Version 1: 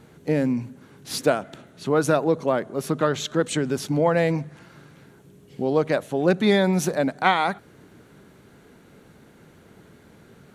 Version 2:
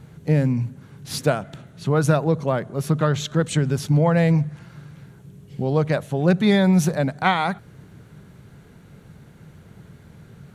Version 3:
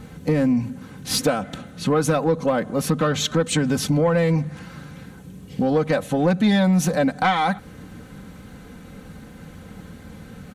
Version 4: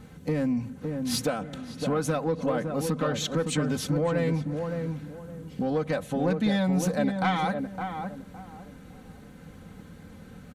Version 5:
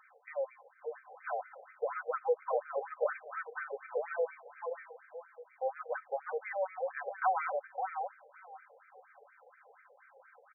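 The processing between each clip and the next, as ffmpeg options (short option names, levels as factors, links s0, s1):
-af "lowshelf=f=200:t=q:w=1.5:g=8.5"
-af "aecho=1:1:3.9:0.68,acompressor=threshold=0.0708:ratio=2.5,asoftclip=type=tanh:threshold=0.15,volume=2.11"
-filter_complex "[0:a]asplit=2[s0][s1];[s1]adelay=562,lowpass=f=1000:p=1,volume=0.596,asplit=2[s2][s3];[s3]adelay=562,lowpass=f=1000:p=1,volume=0.3,asplit=2[s4][s5];[s5]adelay=562,lowpass=f=1000:p=1,volume=0.3,asplit=2[s6][s7];[s7]adelay=562,lowpass=f=1000:p=1,volume=0.3[s8];[s0][s2][s4][s6][s8]amix=inputs=5:normalize=0,volume=0.422"
-af "afftfilt=real='re*between(b*sr/1024,590*pow(1800/590,0.5+0.5*sin(2*PI*4.2*pts/sr))/1.41,590*pow(1800/590,0.5+0.5*sin(2*PI*4.2*pts/sr))*1.41)':imag='im*between(b*sr/1024,590*pow(1800/590,0.5+0.5*sin(2*PI*4.2*pts/sr))/1.41,590*pow(1800/590,0.5+0.5*sin(2*PI*4.2*pts/sr))*1.41)':win_size=1024:overlap=0.75"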